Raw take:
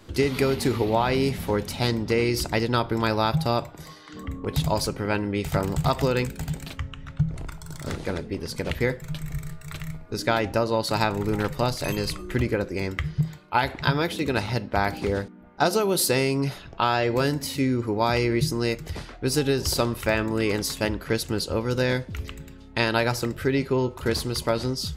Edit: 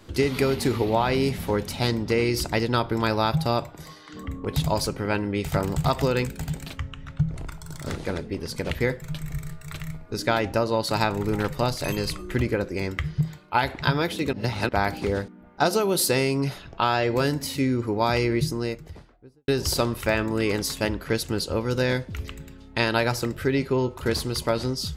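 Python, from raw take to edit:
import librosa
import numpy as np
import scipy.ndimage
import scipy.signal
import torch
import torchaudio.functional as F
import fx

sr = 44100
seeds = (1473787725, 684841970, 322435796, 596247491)

y = fx.studio_fade_out(x, sr, start_s=18.21, length_s=1.27)
y = fx.edit(y, sr, fx.reverse_span(start_s=14.33, length_s=0.36), tone=tone)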